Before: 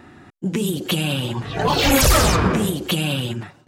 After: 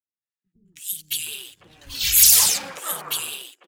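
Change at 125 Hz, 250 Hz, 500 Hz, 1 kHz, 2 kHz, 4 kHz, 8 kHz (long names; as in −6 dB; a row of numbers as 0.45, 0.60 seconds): −25.0 dB, below −25 dB, −20.5 dB, −14.0 dB, −8.5 dB, −0.5 dB, +7.0 dB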